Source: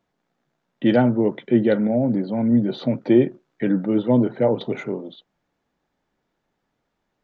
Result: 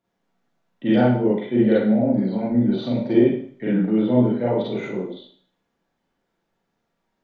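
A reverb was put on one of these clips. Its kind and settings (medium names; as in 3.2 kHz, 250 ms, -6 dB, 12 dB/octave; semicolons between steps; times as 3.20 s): Schroeder reverb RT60 0.51 s, combs from 33 ms, DRR -7.5 dB; trim -8 dB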